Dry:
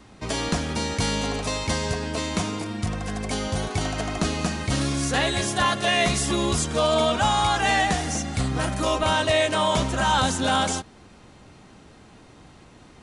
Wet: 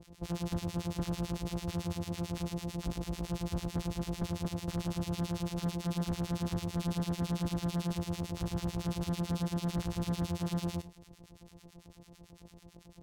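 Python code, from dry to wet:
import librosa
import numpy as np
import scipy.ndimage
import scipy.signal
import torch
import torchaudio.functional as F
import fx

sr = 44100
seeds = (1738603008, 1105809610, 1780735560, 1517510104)

p1 = np.r_[np.sort(x[:len(x) // 256 * 256].reshape(-1, 256), axis=1).ravel(), x[len(x) // 256 * 256:]]
p2 = fx.peak_eq(p1, sr, hz=1500.0, db=-13.0, octaves=1.4)
p3 = 10.0 ** (-24.0 / 20.0) * np.tanh(p2 / 10.0 ** (-24.0 / 20.0))
p4 = fx.harmonic_tremolo(p3, sr, hz=9.0, depth_pct=100, crossover_hz=1100.0)
p5 = np.clip(10.0 ** (28.0 / 20.0) * p4, -1.0, 1.0) / 10.0 ** (28.0 / 20.0)
p6 = p5 + fx.echo_single(p5, sr, ms=94, db=-15.0, dry=0)
p7 = np.interp(np.arange(len(p6)), np.arange(len(p6))[::2], p6[::2])
y = p7 * librosa.db_to_amplitude(-1.0)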